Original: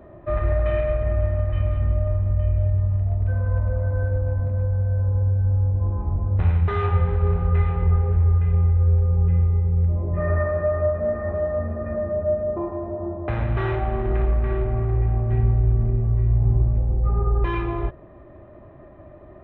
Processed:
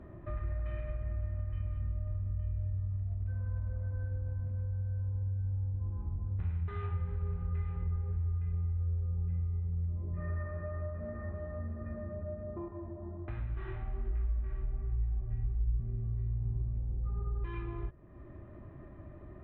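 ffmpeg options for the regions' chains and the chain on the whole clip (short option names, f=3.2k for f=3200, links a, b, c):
-filter_complex "[0:a]asettb=1/sr,asplit=3[a][b][c];[a]atrim=end=12.684[d];[b]atrim=start=12.68:end=15.8,asetpts=PTS-STARTPTS,afade=t=in:d=0.004:c=qsin,afade=t=out:st=3.116:d=0.004:c=qsin,asubboost=boost=7:cutoff=57,flanger=delay=19:depth=6.2:speed=1.3,bandreject=f=510:w=7.5[e];[c]atrim=start=15.796[f];[d][e]acrossfade=d=0.004:c1=hsin:c2=qsin[g];[g][f]acrossfade=d=0.004:c1=qsin:c2=hsin,lowpass=f=1.9k:p=1,equalizer=f=630:t=o:w=1.5:g=-11.5,acompressor=threshold=-44dB:ratio=2"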